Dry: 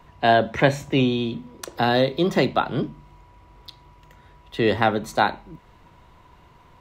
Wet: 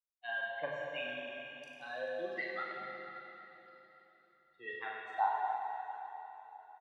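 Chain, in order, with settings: per-bin expansion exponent 3; wah 1.3 Hz 770–2200 Hz, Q 3; reverse bouncing-ball echo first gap 40 ms, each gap 1.4×, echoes 5; plate-style reverb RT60 3.7 s, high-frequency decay 0.95×, DRR -1.5 dB; gain -7.5 dB

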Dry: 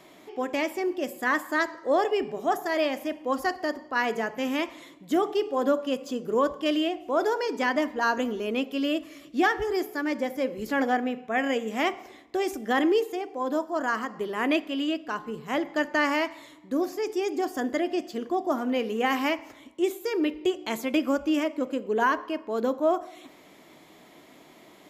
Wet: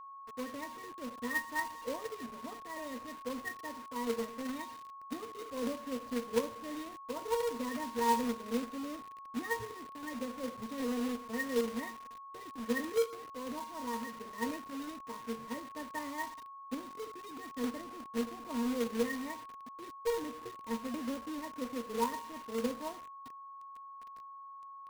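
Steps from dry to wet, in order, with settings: octave resonator A#, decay 0.17 s; companded quantiser 4-bit; whine 1100 Hz -48 dBFS; gain +1.5 dB

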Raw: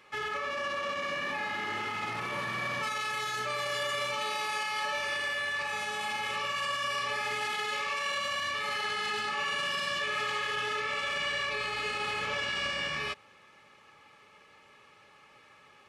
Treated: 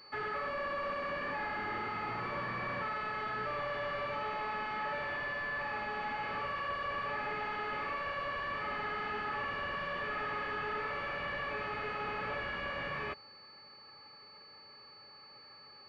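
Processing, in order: hard clip -32 dBFS, distortion -11 dB; pulse-width modulation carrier 4500 Hz

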